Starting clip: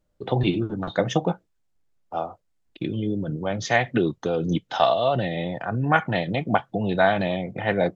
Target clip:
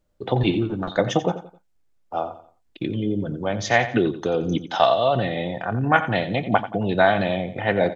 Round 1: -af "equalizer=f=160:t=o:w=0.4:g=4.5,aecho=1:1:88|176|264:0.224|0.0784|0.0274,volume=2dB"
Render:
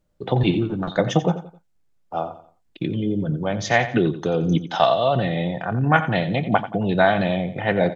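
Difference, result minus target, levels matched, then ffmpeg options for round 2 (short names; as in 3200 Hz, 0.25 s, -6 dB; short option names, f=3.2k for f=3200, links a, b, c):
125 Hz band +3.0 dB
-af "equalizer=f=160:t=o:w=0.4:g=-4,aecho=1:1:88|176|264:0.224|0.0784|0.0274,volume=2dB"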